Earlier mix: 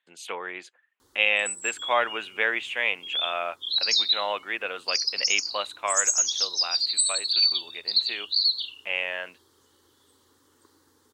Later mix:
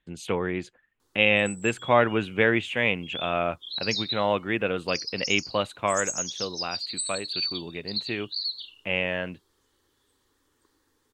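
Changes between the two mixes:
speech: remove HPF 760 Hz 12 dB/oct; background -8.0 dB

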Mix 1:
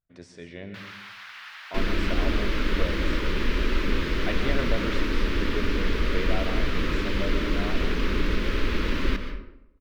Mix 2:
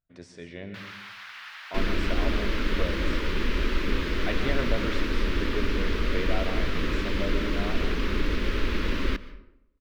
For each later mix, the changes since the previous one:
second sound: send -10.0 dB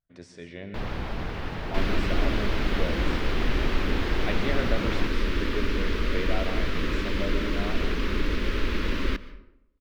first sound: remove HPF 1300 Hz 24 dB/oct

